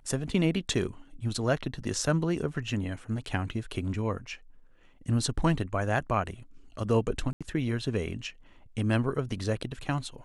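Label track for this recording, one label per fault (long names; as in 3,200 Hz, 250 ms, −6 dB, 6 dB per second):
7.330000	7.410000	drop-out 76 ms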